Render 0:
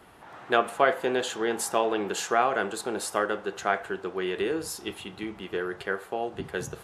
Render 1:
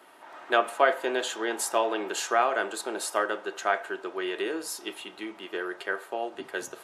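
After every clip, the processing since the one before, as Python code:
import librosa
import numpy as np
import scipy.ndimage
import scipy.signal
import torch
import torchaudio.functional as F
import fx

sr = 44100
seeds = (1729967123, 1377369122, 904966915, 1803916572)

y = scipy.signal.sosfilt(scipy.signal.butter(2, 380.0, 'highpass', fs=sr, output='sos'), x)
y = y + 0.36 * np.pad(y, (int(3.2 * sr / 1000.0), 0))[:len(y)]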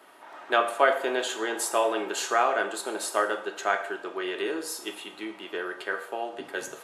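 y = fx.rev_plate(x, sr, seeds[0], rt60_s=0.63, hf_ratio=1.0, predelay_ms=0, drr_db=6.5)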